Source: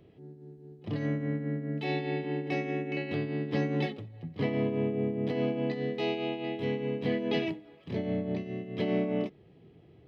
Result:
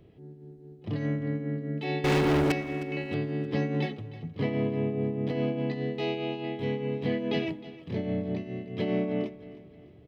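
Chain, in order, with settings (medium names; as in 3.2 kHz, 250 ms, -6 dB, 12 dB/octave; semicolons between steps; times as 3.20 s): bass shelf 78 Hz +9.5 dB; 2.04–2.52 s: waveshaping leveller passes 5; on a send: feedback delay 311 ms, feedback 43%, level -17 dB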